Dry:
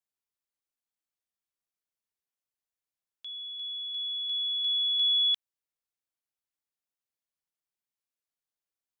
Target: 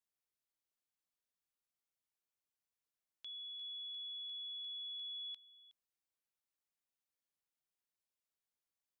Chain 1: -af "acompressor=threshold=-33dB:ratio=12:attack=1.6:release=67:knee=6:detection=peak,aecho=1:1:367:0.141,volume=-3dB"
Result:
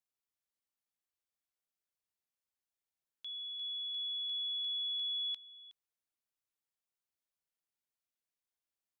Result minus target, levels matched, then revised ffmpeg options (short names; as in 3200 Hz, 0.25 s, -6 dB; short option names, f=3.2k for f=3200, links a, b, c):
compressor: peak gain reduction -8.5 dB
-af "acompressor=threshold=-42.5dB:ratio=12:attack=1.6:release=67:knee=6:detection=peak,aecho=1:1:367:0.141,volume=-3dB"